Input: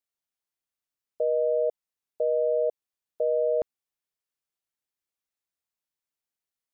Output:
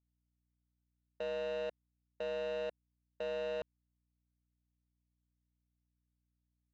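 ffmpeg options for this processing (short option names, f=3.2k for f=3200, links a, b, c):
-af "aeval=exprs='val(0)+0.00126*(sin(2*PI*60*n/s)+sin(2*PI*2*60*n/s)/2+sin(2*PI*3*60*n/s)/3+sin(2*PI*4*60*n/s)/4+sin(2*PI*5*60*n/s)/5)':c=same,aeval=exprs='0.133*(cos(1*acos(clip(val(0)/0.133,-1,1)))-cos(1*PI/2))+0.0473*(cos(3*acos(clip(val(0)/0.133,-1,1)))-cos(3*PI/2))':c=same,asoftclip=type=tanh:threshold=-32.5dB"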